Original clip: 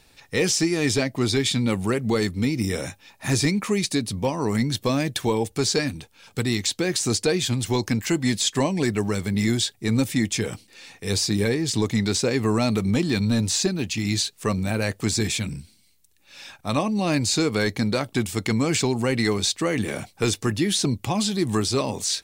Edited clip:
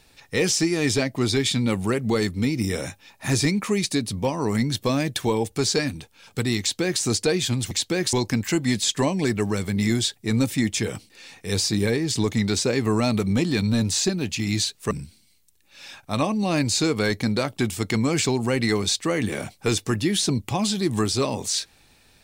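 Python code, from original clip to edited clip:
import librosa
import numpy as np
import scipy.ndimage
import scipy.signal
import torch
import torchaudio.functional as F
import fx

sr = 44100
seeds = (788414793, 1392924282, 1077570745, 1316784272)

y = fx.edit(x, sr, fx.duplicate(start_s=6.6, length_s=0.42, to_s=7.71),
    fx.cut(start_s=14.49, length_s=0.98), tone=tone)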